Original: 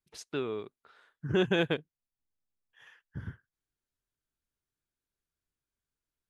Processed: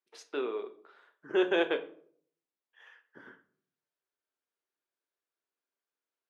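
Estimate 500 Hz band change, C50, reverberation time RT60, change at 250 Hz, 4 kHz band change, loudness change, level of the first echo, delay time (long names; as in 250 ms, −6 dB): +1.5 dB, 14.5 dB, 0.60 s, −2.0 dB, −2.5 dB, +1.0 dB, no echo audible, no echo audible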